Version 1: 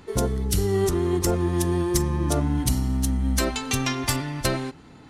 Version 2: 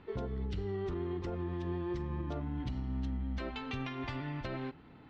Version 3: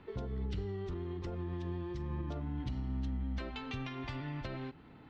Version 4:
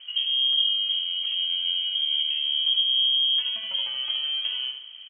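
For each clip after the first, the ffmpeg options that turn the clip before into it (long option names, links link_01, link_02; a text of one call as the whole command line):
ffmpeg -i in.wav -af "lowpass=frequency=3400:width=0.5412,lowpass=frequency=3400:width=1.3066,alimiter=limit=-21dB:level=0:latency=1:release=172,volume=-8dB" out.wav
ffmpeg -i in.wav -filter_complex "[0:a]acrossover=split=180|3000[link_01][link_02][link_03];[link_02]acompressor=threshold=-41dB:ratio=6[link_04];[link_01][link_04][link_03]amix=inputs=3:normalize=0" out.wav
ffmpeg -i in.wav -filter_complex "[0:a]tiltshelf=frequency=670:gain=9,lowpass=frequency=2800:width_type=q:width=0.5098,lowpass=frequency=2800:width_type=q:width=0.6013,lowpass=frequency=2800:width_type=q:width=0.9,lowpass=frequency=2800:width_type=q:width=2.563,afreqshift=-3300,asplit=2[link_01][link_02];[link_02]adelay=73,lowpass=frequency=2100:poles=1,volume=-3dB,asplit=2[link_03][link_04];[link_04]adelay=73,lowpass=frequency=2100:poles=1,volume=0.52,asplit=2[link_05][link_06];[link_06]adelay=73,lowpass=frequency=2100:poles=1,volume=0.52,asplit=2[link_07][link_08];[link_08]adelay=73,lowpass=frequency=2100:poles=1,volume=0.52,asplit=2[link_09][link_10];[link_10]adelay=73,lowpass=frequency=2100:poles=1,volume=0.52,asplit=2[link_11][link_12];[link_12]adelay=73,lowpass=frequency=2100:poles=1,volume=0.52,asplit=2[link_13][link_14];[link_14]adelay=73,lowpass=frequency=2100:poles=1,volume=0.52[link_15];[link_01][link_03][link_05][link_07][link_09][link_11][link_13][link_15]amix=inputs=8:normalize=0,volume=5dB" out.wav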